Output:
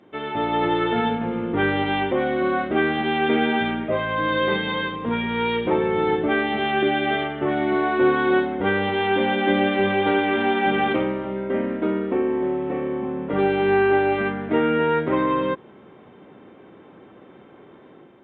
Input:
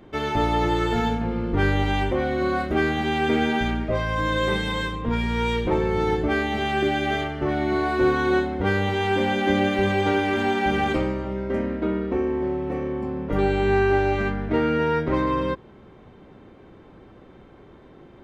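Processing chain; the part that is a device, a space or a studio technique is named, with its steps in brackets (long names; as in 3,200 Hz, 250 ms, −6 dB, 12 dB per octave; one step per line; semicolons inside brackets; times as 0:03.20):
Bluetooth headset (high-pass filter 180 Hz 12 dB per octave; automatic gain control gain up to 6 dB; downsampling to 8,000 Hz; level −3.5 dB; SBC 64 kbit/s 16,000 Hz)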